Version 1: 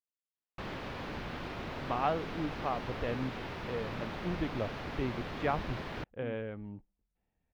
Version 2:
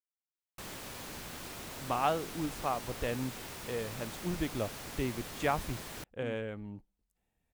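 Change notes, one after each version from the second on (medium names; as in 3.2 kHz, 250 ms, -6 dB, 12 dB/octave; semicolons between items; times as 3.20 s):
background -7.0 dB; master: remove distance through air 310 m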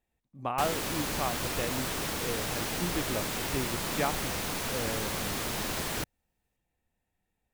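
speech: entry -1.45 s; background +11.0 dB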